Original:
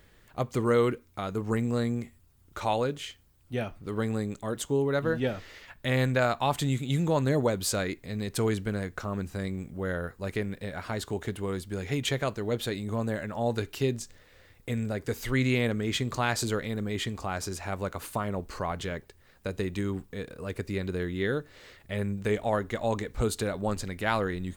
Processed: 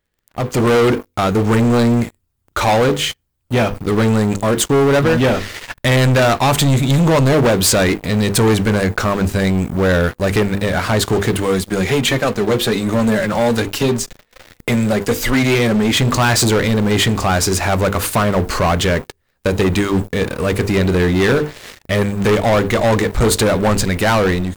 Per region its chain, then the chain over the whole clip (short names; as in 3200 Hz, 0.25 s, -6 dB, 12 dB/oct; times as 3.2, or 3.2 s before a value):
11.38–15.97 flange 1.3 Hz, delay 3.2 ms, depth 2.7 ms, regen +37% + three-band squash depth 40%
whole clip: notches 50/100/150/200/250/300/350/400/450/500 Hz; sample leveller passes 5; AGC gain up to 11 dB; gain -6.5 dB